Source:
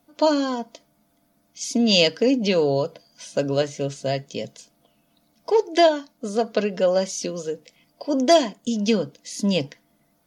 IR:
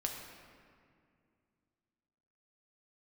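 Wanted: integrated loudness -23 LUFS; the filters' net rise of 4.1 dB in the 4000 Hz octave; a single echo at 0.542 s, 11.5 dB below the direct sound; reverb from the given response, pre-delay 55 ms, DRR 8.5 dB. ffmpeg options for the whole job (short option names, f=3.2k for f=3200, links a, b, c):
-filter_complex "[0:a]equalizer=f=4k:t=o:g=5.5,aecho=1:1:542:0.266,asplit=2[a][b];[1:a]atrim=start_sample=2205,adelay=55[c];[b][c]afir=irnorm=-1:irlink=0,volume=-10dB[d];[a][d]amix=inputs=2:normalize=0,volume=-2dB"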